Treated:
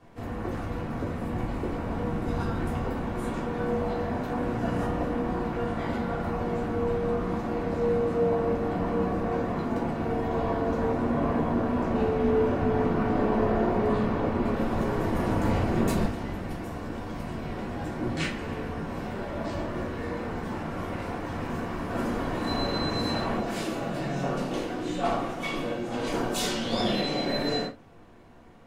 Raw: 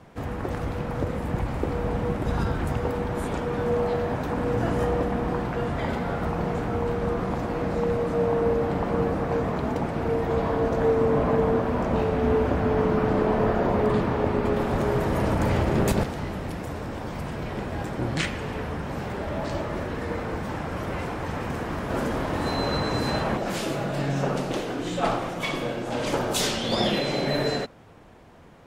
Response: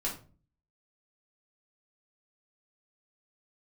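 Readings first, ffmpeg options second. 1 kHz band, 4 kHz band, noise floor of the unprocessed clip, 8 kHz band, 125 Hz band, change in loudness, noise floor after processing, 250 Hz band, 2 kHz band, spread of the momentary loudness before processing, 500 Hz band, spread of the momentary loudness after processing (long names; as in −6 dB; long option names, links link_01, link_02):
−2.5 dB, −2.5 dB, −33 dBFS, −5.0 dB, −4.0 dB, −2.5 dB, −36 dBFS, −0.5 dB, −3.5 dB, 8 LU, −3.5 dB, 8 LU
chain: -filter_complex "[1:a]atrim=start_sample=2205,afade=type=out:start_time=0.15:duration=0.01,atrim=end_sample=7056[link_01];[0:a][link_01]afir=irnorm=-1:irlink=0,volume=-7dB"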